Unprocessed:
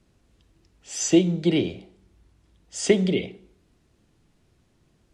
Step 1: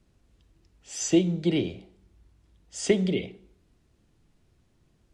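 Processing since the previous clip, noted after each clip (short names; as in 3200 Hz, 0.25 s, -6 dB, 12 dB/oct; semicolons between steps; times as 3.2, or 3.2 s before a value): low shelf 88 Hz +6 dB; gain -4 dB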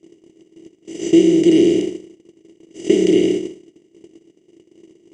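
per-bin compression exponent 0.2; gate -20 dBFS, range -38 dB; small resonant body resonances 330/2900 Hz, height 12 dB, ringing for 30 ms; gain -4.5 dB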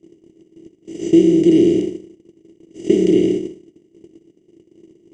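low shelf 380 Hz +11 dB; gain -6 dB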